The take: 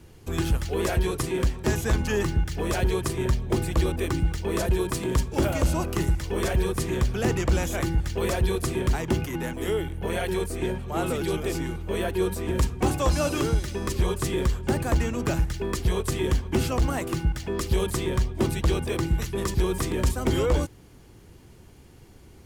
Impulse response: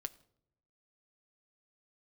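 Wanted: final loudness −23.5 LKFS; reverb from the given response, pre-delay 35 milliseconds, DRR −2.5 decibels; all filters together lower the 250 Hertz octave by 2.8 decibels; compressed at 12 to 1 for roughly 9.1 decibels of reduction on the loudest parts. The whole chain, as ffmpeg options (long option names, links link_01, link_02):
-filter_complex "[0:a]equalizer=frequency=250:width_type=o:gain=-4.5,acompressor=threshold=-27dB:ratio=12,asplit=2[link_01][link_02];[1:a]atrim=start_sample=2205,adelay=35[link_03];[link_02][link_03]afir=irnorm=-1:irlink=0,volume=5dB[link_04];[link_01][link_04]amix=inputs=2:normalize=0,volume=5dB"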